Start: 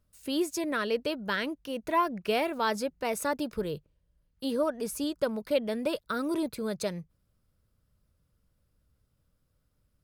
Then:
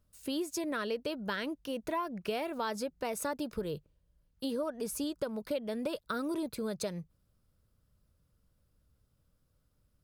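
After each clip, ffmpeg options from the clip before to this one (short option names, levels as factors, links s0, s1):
-af "equalizer=f=2100:t=o:w=0.77:g=-2.5,acompressor=threshold=0.0251:ratio=4"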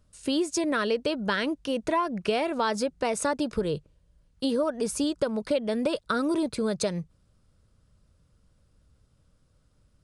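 -af "aresample=22050,aresample=44100,volume=2.66"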